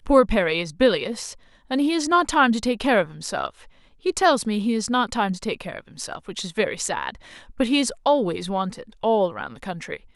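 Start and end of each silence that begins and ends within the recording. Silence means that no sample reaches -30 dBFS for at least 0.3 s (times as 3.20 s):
1.32–1.71 s
3.48–4.06 s
7.15–7.60 s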